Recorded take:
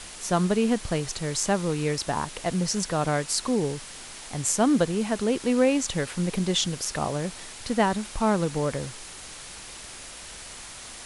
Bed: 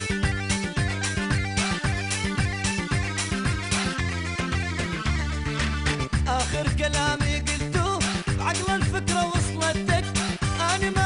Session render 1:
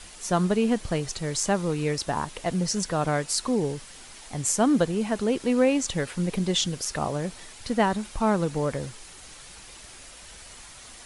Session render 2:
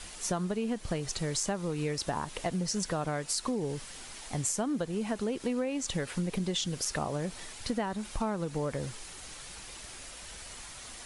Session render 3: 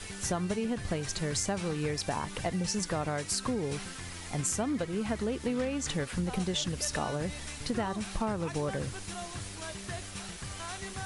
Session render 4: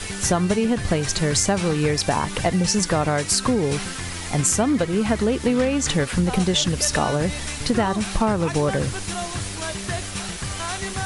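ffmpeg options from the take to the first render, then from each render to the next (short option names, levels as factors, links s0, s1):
-af "afftdn=nr=6:nf=-42"
-af "acompressor=threshold=0.0398:ratio=12"
-filter_complex "[1:a]volume=0.133[s0];[0:a][s0]amix=inputs=2:normalize=0"
-af "volume=3.76"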